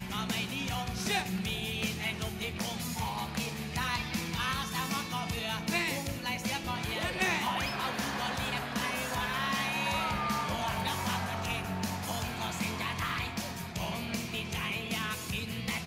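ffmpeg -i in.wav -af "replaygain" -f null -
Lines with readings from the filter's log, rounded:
track_gain = +14.5 dB
track_peak = 0.112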